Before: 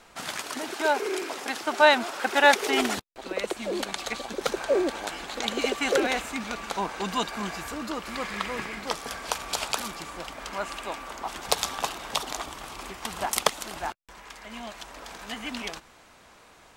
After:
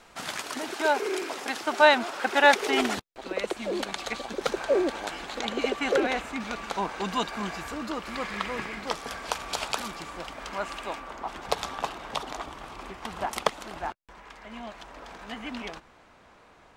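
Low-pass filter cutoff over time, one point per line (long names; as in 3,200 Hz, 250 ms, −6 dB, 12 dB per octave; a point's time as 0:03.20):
low-pass filter 6 dB per octave
9,900 Hz
from 0:01.87 5,600 Hz
from 0:05.41 2,700 Hz
from 0:06.40 5,100 Hz
from 0:11.00 2,000 Hz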